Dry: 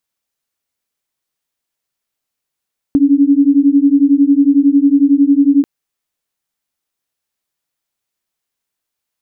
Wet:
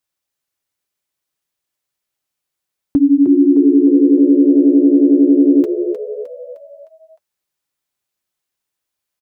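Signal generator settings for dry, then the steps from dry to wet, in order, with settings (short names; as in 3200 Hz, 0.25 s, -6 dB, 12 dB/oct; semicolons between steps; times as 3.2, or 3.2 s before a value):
beating tones 276 Hz, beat 11 Hz, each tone -10 dBFS 2.69 s
notch comb 230 Hz; on a send: frequency-shifting echo 0.307 s, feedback 47%, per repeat +72 Hz, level -8.5 dB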